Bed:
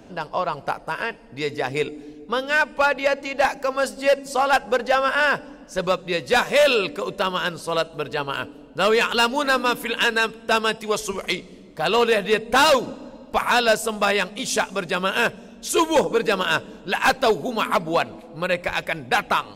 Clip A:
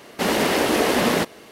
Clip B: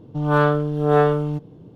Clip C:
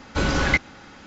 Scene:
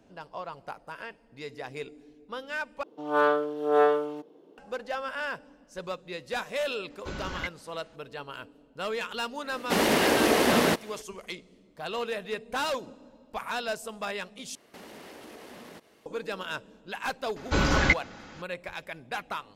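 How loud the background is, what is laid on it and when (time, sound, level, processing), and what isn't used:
bed -14 dB
2.83 replace with B -4 dB + HPF 330 Hz 24 dB/oct
6.9 add C -15.5 dB
9.51 add A -3 dB
14.55 replace with A -16 dB + compressor 5:1, threshold -28 dBFS
17.36 add C -2 dB

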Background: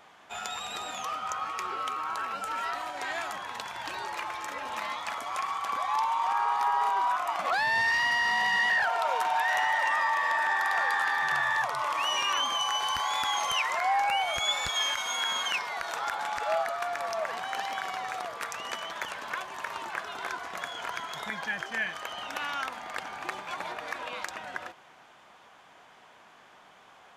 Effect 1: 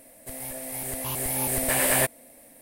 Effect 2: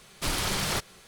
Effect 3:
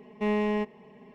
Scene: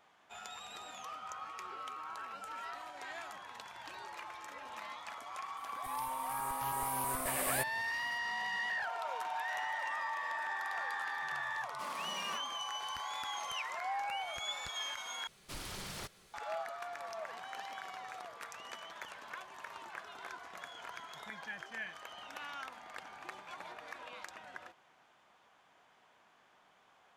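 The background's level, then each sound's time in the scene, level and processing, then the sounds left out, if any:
background -11.5 dB
5.57 add 1 -13 dB
11.57 add 2 -12.5 dB + rippled Chebyshev high-pass 160 Hz, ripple 9 dB
15.27 replace with 2 -16.5 dB + G.711 law mismatch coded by mu
not used: 3

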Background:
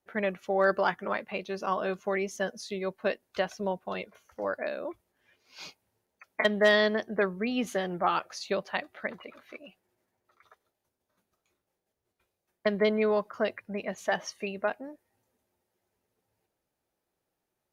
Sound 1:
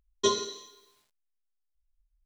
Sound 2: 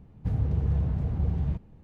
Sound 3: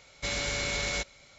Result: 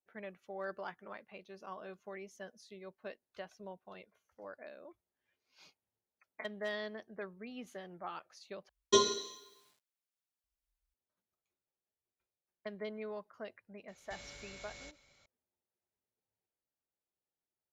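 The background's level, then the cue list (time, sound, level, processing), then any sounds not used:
background -17 dB
8.69 replace with 1 -1 dB + HPF 86 Hz
13.88 add 3 -12 dB + compressor, threshold -36 dBFS
not used: 2

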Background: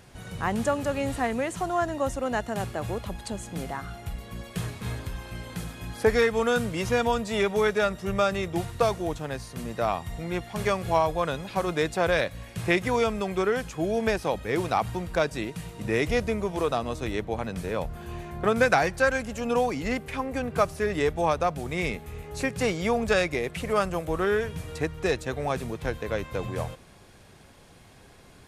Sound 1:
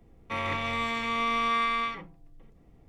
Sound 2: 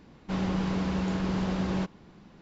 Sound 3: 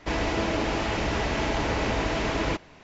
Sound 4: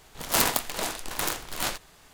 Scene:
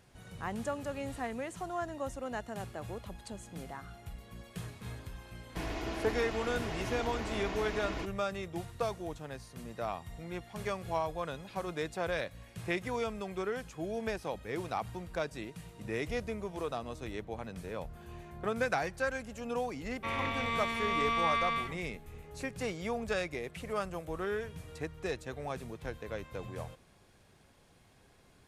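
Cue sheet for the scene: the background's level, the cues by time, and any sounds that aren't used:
background -10.5 dB
5.49 add 3 -12.5 dB + comb 2.8 ms, depth 35%
19.73 add 1 -4 dB
not used: 2, 4

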